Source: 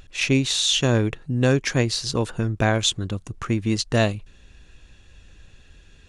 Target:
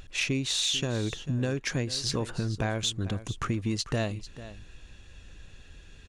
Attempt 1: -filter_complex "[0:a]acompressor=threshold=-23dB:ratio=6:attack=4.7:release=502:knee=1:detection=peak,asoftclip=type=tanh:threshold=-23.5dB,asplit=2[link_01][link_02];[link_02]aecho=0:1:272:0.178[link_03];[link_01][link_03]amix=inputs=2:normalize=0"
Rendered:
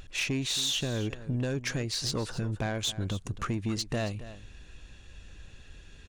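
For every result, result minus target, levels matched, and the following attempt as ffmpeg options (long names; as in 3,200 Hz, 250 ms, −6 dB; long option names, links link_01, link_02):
soft clipping: distortion +12 dB; echo 172 ms early
-filter_complex "[0:a]acompressor=threshold=-23dB:ratio=6:attack=4.7:release=502:knee=1:detection=peak,asoftclip=type=tanh:threshold=-15.5dB,asplit=2[link_01][link_02];[link_02]aecho=0:1:272:0.178[link_03];[link_01][link_03]amix=inputs=2:normalize=0"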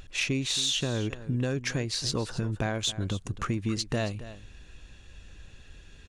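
echo 172 ms early
-filter_complex "[0:a]acompressor=threshold=-23dB:ratio=6:attack=4.7:release=502:knee=1:detection=peak,asoftclip=type=tanh:threshold=-15.5dB,asplit=2[link_01][link_02];[link_02]aecho=0:1:444:0.178[link_03];[link_01][link_03]amix=inputs=2:normalize=0"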